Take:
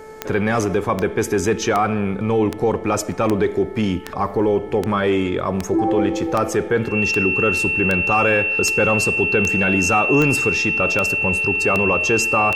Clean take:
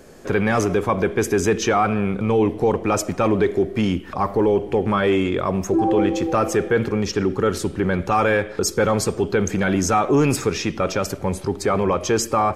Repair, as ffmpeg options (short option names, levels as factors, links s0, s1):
-af "adeclick=t=4,bandreject=f=436.6:t=h:w=4,bandreject=f=873.2:t=h:w=4,bandreject=f=1309.8:t=h:w=4,bandreject=f=1746.4:t=h:w=4,bandreject=f=2183:t=h:w=4,bandreject=f=2700:w=30"